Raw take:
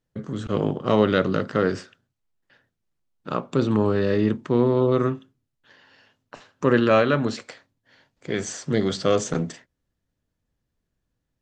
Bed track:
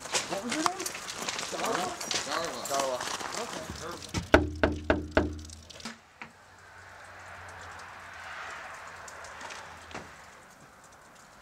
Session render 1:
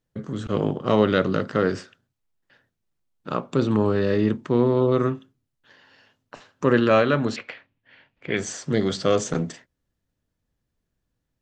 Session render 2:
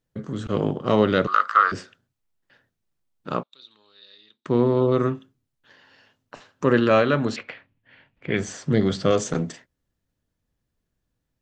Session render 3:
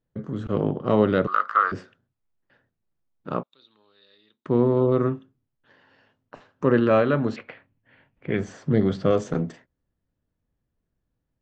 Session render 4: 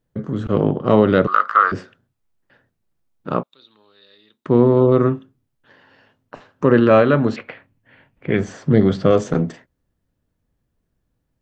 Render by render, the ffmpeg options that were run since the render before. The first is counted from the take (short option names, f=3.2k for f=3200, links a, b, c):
-filter_complex "[0:a]asettb=1/sr,asplit=3[a][b][c];[a]atrim=end=7.364[d];[b]atrim=start=7.36:end=8.37,asetpts=PTS-STARTPTS,afade=t=in:d=0.004:c=qsin,afade=t=out:st=1.006:d=0.004:c=qsin,lowpass=f=2.6k:t=q:w=2.9[e];[c]atrim=start=8.366[f];[d][e]acrossfade=d=0.004:c1=hsin:c2=qsin[g];[g][f]acrossfade=d=0.004:c1=qsin:c2=hsin"
-filter_complex "[0:a]asettb=1/sr,asplit=3[a][b][c];[a]atrim=end=1.274[d];[b]atrim=start=1.27:end=1.72,asetpts=PTS-STARTPTS,afade=t=in:d=0.004:c=qsin,afade=t=out:st=0.446:d=0.004:c=qsin,highpass=f=1.2k:t=q:w=9.4[e];[c]atrim=start=1.716[f];[d][e]acrossfade=d=0.004:c1=hsin:c2=qsin[g];[g][f]acrossfade=d=0.004:c1=qsin:c2=hsin,asettb=1/sr,asplit=3[h][i][j];[h]atrim=end=3.434[k];[i]atrim=start=3.43:end=4.46,asetpts=PTS-STARTPTS,afade=t=in:d=0.004:c=qsin,afade=t=out:st=1.026:d=0.004:c=qsin,bandpass=f=3.8k:t=q:w=12[l];[j]atrim=start=4.456[m];[k][l]acrossfade=d=0.004:c1=hsin:c2=qsin[n];[n][m]acrossfade=d=0.004:c1=qsin:c2=hsin,asettb=1/sr,asplit=3[o][p][q];[o]atrim=end=7.434[r];[p]atrim=start=7.43:end=9.11,asetpts=PTS-STARTPTS,afade=t=in:d=0.004:c=qsin,afade=t=out:st=1.676:d=0.004:c=qsin,bass=f=250:g=5,treble=f=4k:g=-5[s];[q]atrim=start=9.106[t];[r][s]acrossfade=d=0.004:c1=hsin:c2=qsin[u];[u][t]acrossfade=d=0.004:c1=qsin:c2=hsin"
-af "lowpass=f=1.3k:p=1"
-af "volume=6.5dB,alimiter=limit=-2dB:level=0:latency=1"